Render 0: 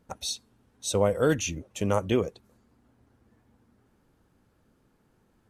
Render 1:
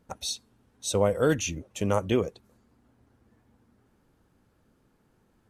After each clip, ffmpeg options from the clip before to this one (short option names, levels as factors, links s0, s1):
-af anull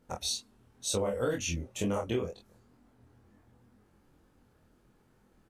-filter_complex "[0:a]flanger=delay=20:depth=6.6:speed=2.1,asplit=2[s0][s1];[s1]adelay=24,volume=0.708[s2];[s0][s2]amix=inputs=2:normalize=0,acompressor=threshold=0.0316:ratio=5,volume=1.26"